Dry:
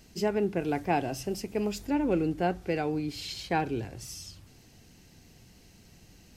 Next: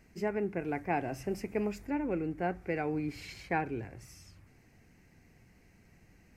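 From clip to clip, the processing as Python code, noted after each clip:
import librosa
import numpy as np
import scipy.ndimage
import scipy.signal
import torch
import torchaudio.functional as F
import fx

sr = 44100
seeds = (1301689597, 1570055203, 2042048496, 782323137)

y = fx.high_shelf_res(x, sr, hz=2700.0, db=-7.0, q=3.0)
y = fx.rider(y, sr, range_db=4, speed_s=0.5)
y = y * librosa.db_to_amplitude(-4.5)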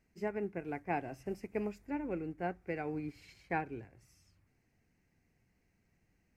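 y = fx.upward_expand(x, sr, threshold_db=-49.0, expansion=1.5)
y = y * librosa.db_to_amplitude(-3.0)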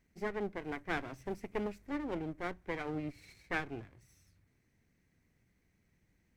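y = fx.lower_of_two(x, sr, delay_ms=0.51)
y = fx.doppler_dist(y, sr, depth_ms=0.13)
y = y * librosa.db_to_amplitude(1.5)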